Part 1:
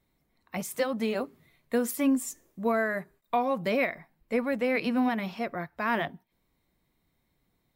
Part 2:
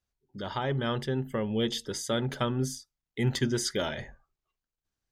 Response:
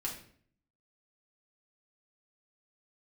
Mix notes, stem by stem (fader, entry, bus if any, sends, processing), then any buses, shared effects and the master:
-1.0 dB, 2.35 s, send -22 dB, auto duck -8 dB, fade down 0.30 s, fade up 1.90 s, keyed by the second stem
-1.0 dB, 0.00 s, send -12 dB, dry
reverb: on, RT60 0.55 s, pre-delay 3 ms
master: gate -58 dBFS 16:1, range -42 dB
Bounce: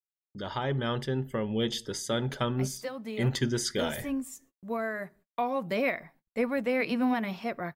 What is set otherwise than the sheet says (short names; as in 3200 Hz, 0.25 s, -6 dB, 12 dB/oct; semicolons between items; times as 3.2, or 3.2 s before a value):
stem 1: entry 2.35 s -> 2.05 s; reverb return -7.5 dB